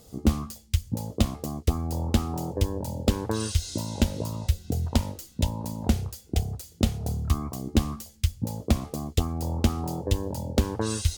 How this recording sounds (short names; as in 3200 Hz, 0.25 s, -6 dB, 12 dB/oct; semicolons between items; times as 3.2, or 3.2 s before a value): noise floor -53 dBFS; spectral tilt -6.0 dB/oct